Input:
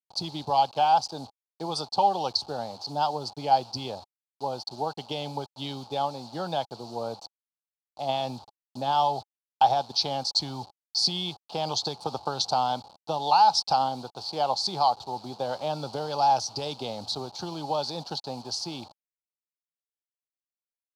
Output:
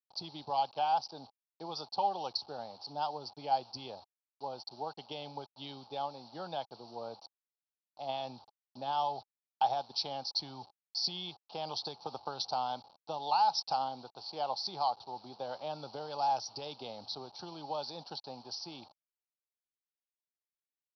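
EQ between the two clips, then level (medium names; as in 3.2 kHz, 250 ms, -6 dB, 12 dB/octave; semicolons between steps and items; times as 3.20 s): Chebyshev low-pass 5.8 kHz, order 10; bass shelf 180 Hz -7 dB; -8.5 dB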